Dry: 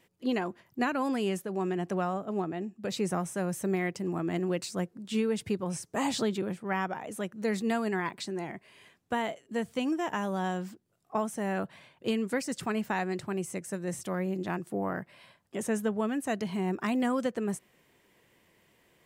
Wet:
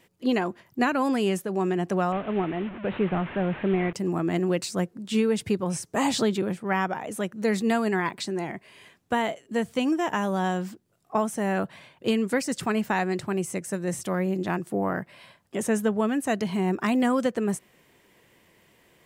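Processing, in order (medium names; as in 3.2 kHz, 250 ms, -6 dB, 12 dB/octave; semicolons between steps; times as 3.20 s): 2.12–3.93 s: one-bit delta coder 16 kbps, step -38 dBFS; trim +5.5 dB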